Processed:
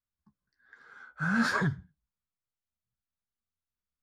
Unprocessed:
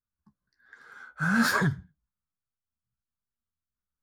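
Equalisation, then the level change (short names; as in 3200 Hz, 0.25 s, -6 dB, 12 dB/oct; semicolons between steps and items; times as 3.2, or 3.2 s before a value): air absorption 62 m; -3.0 dB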